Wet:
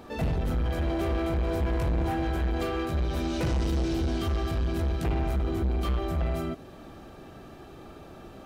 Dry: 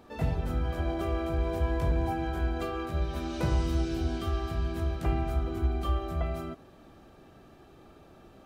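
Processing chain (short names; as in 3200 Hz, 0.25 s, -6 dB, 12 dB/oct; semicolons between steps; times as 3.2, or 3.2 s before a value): soft clip -31 dBFS, distortion -9 dB; dynamic EQ 1100 Hz, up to -4 dB, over -55 dBFS, Q 1.1; gain +8 dB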